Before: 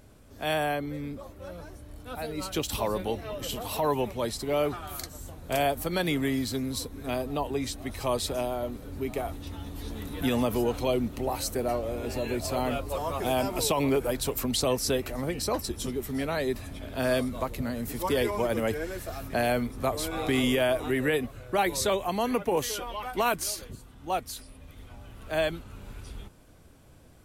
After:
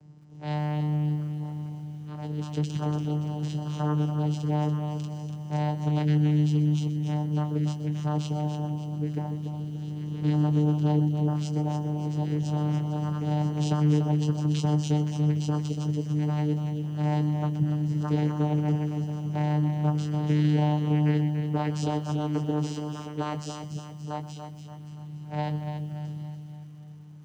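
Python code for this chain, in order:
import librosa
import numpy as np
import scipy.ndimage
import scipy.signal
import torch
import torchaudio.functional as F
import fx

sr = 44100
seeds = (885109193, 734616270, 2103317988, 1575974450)

p1 = fx.bass_treble(x, sr, bass_db=6, treble_db=7)
p2 = fx.vocoder(p1, sr, bands=8, carrier='saw', carrier_hz=150.0)
p3 = fx.doubler(p2, sr, ms=21.0, db=-9.5)
p4 = p3 + fx.echo_feedback(p3, sr, ms=287, feedback_pct=47, wet_db=-8.0, dry=0)
p5 = fx.echo_crushed(p4, sr, ms=126, feedback_pct=35, bits=8, wet_db=-15.0)
y = p5 * librosa.db_to_amplitude(-2.0)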